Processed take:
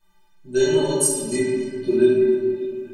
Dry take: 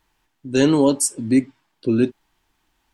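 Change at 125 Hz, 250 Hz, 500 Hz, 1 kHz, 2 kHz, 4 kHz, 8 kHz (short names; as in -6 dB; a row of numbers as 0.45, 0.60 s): -4.5, -4.0, +5.0, -4.5, 0.0, -0.5, +1.5 dB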